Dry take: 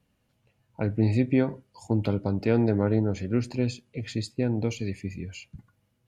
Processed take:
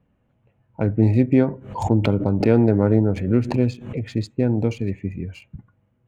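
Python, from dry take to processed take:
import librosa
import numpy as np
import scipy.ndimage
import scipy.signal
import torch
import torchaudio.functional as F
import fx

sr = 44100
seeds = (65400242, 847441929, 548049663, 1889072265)

y = fx.wiener(x, sr, points=9)
y = fx.high_shelf(y, sr, hz=2300.0, db=-9.0)
y = fx.pre_swell(y, sr, db_per_s=90.0, at=(1.47, 4.03))
y = F.gain(torch.from_numpy(y), 6.5).numpy()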